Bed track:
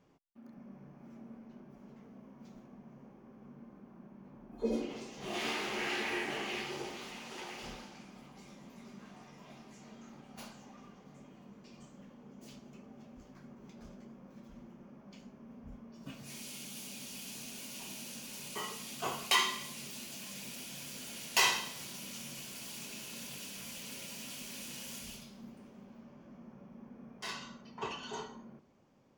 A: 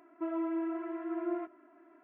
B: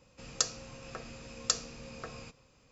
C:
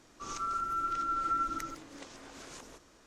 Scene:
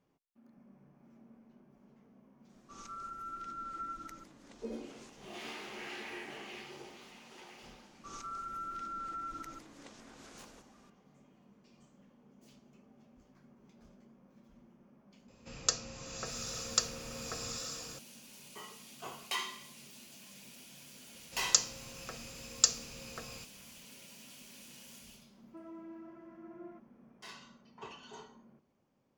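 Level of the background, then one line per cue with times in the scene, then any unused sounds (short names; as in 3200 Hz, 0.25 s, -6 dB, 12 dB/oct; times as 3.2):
bed track -8.5 dB
2.49 add C -10.5 dB
7.84 add C -6 dB + limiter -29.5 dBFS
15.28 add B -0.5 dB + bloom reverb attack 0.88 s, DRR 5 dB
21.14 add B -4 dB + high shelf 3600 Hz +11 dB
25.33 add A -15 dB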